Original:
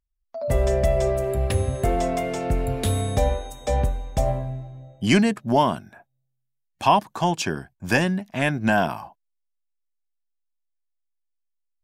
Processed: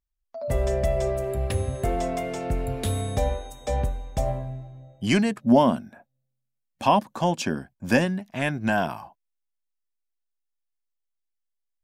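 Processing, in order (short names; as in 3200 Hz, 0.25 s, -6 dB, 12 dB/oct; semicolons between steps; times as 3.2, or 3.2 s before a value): 5.41–8.04 small resonant body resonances 240/530 Hz, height 12 dB -> 9 dB; gain -3.5 dB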